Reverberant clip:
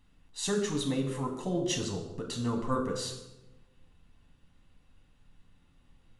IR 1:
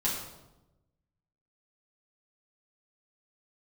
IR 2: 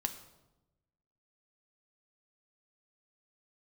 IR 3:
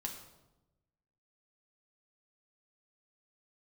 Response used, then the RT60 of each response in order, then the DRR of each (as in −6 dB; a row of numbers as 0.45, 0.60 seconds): 3; 1.0, 1.0, 1.0 seconds; −7.0, 6.5, 1.0 decibels